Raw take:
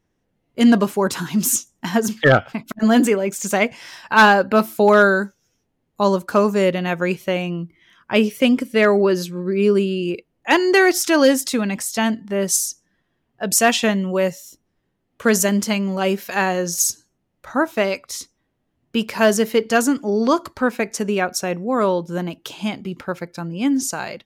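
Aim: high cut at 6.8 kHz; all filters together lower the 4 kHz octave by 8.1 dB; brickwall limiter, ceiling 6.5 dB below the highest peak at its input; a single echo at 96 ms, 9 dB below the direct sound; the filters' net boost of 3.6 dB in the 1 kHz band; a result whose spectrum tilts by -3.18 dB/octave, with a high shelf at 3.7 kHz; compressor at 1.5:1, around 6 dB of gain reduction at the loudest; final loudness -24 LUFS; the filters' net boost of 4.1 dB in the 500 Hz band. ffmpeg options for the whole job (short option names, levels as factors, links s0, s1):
-af "lowpass=6800,equalizer=f=500:t=o:g=4.5,equalizer=f=1000:t=o:g=4,highshelf=f=3700:g=-6,equalizer=f=4000:t=o:g=-8,acompressor=threshold=0.0794:ratio=1.5,alimiter=limit=0.266:level=0:latency=1,aecho=1:1:96:0.355,volume=0.841"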